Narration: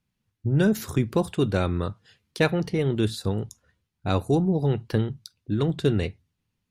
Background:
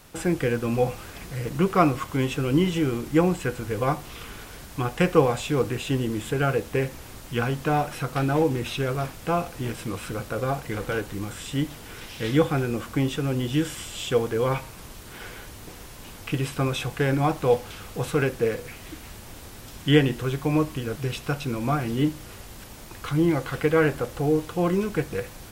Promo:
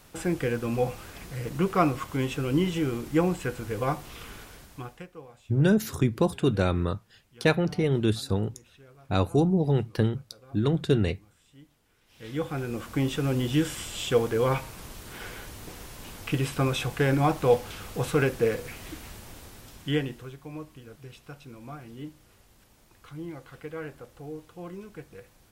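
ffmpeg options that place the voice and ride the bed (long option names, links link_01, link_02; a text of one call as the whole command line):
ffmpeg -i stem1.wav -i stem2.wav -filter_complex "[0:a]adelay=5050,volume=-0.5dB[link_01];[1:a]volume=23dB,afade=type=out:start_time=4.33:duration=0.74:silence=0.0668344,afade=type=in:start_time=12.05:duration=1.21:silence=0.0473151,afade=type=out:start_time=18.88:duration=1.48:silence=0.149624[link_02];[link_01][link_02]amix=inputs=2:normalize=0" out.wav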